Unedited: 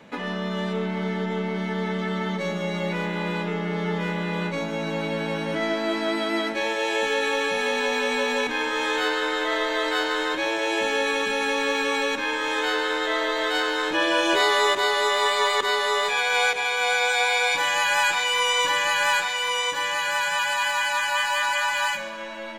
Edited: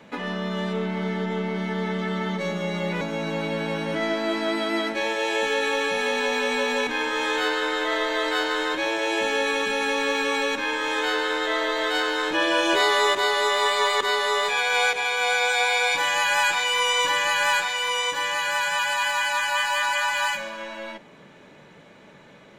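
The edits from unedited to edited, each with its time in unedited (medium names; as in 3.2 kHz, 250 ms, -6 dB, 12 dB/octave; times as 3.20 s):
3.01–4.61 s: delete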